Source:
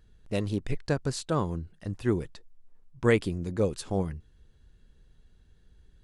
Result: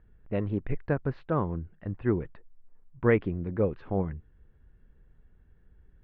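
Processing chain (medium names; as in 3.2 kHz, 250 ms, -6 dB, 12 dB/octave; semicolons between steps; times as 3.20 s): inverse Chebyshev low-pass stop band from 8.6 kHz, stop band 70 dB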